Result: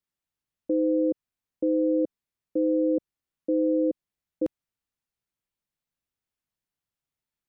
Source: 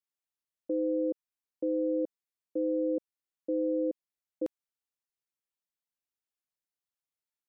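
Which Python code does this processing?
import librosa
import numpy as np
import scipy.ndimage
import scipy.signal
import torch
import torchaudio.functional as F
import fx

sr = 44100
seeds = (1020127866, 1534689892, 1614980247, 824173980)

y = fx.bass_treble(x, sr, bass_db=10, treble_db=-4)
y = F.gain(torch.from_numpy(y), 4.0).numpy()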